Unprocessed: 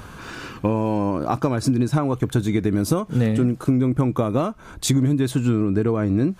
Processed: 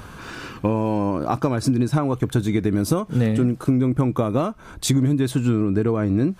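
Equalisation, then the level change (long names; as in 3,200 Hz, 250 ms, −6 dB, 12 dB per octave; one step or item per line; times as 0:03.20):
notch filter 6,800 Hz, Q 26
0.0 dB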